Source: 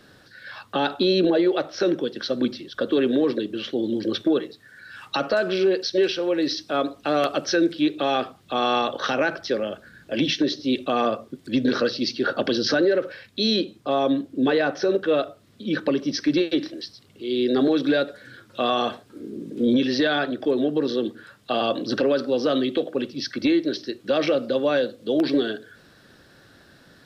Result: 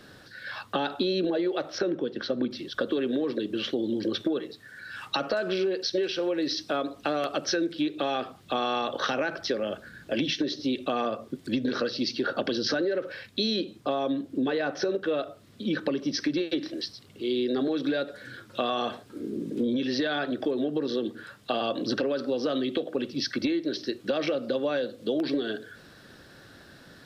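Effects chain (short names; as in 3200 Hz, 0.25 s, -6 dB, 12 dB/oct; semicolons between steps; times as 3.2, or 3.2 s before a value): 1.78–2.51 LPF 1900 Hz 6 dB/oct; compressor, threshold -26 dBFS, peak gain reduction 10 dB; gain +1.5 dB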